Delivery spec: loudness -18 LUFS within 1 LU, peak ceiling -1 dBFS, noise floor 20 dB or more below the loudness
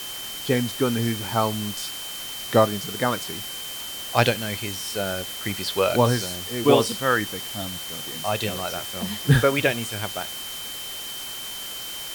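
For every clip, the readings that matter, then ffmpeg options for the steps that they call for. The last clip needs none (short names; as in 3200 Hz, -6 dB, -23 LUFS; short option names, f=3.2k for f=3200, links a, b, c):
steady tone 3100 Hz; tone level -35 dBFS; noise floor -34 dBFS; noise floor target -45 dBFS; loudness -24.5 LUFS; peak -2.5 dBFS; loudness target -18.0 LUFS
-> -af "bandreject=f=3.1k:w=30"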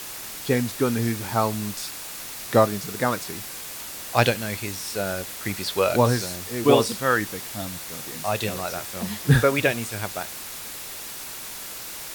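steady tone none; noise floor -36 dBFS; noise floor target -45 dBFS
-> -af "afftdn=nr=9:nf=-36"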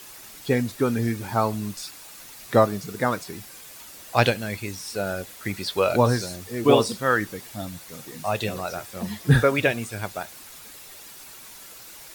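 noise floor -44 dBFS; noise floor target -45 dBFS
-> -af "afftdn=nr=6:nf=-44"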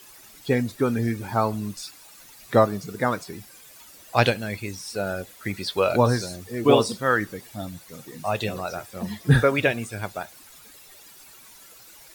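noise floor -49 dBFS; loudness -24.5 LUFS; peak -3.0 dBFS; loudness target -18.0 LUFS
-> -af "volume=6.5dB,alimiter=limit=-1dB:level=0:latency=1"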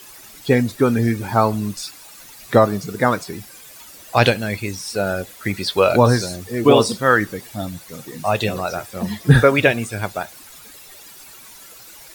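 loudness -18.5 LUFS; peak -1.0 dBFS; noise floor -42 dBFS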